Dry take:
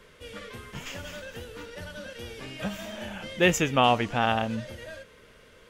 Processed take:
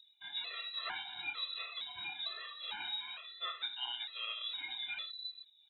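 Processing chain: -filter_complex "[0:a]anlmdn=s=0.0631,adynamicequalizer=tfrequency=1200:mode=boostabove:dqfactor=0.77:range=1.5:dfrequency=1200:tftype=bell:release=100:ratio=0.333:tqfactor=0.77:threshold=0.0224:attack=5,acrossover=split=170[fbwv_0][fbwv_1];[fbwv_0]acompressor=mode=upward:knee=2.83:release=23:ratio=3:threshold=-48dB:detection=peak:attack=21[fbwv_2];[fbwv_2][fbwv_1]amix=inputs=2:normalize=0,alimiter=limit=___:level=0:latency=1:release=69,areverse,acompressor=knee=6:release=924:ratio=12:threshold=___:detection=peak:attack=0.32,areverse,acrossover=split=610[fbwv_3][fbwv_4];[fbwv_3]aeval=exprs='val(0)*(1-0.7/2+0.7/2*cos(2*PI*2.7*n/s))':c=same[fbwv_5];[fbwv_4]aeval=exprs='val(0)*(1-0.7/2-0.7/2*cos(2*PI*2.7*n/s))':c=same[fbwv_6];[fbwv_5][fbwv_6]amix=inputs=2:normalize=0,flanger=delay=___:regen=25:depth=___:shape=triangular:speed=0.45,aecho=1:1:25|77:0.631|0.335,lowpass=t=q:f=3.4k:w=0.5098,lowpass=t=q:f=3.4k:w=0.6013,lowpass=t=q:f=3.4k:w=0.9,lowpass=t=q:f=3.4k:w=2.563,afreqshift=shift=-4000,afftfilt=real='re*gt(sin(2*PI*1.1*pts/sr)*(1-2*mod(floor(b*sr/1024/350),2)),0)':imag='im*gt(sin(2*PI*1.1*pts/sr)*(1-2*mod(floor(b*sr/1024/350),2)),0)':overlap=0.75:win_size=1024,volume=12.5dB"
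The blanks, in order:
-10.5dB, -36dB, 3.1, 9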